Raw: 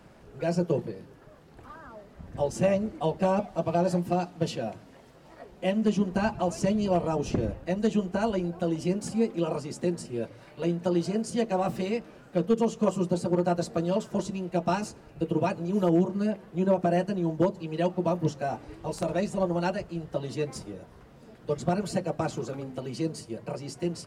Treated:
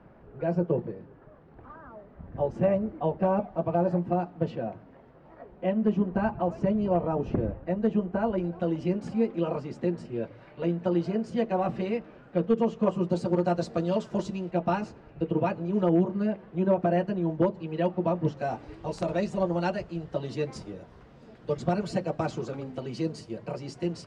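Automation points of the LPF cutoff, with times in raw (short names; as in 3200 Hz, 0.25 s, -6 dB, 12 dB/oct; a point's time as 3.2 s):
1600 Hz
from 8.38 s 2700 Hz
from 13.1 s 5100 Hz
from 14.51 s 2800 Hz
from 18.37 s 5200 Hz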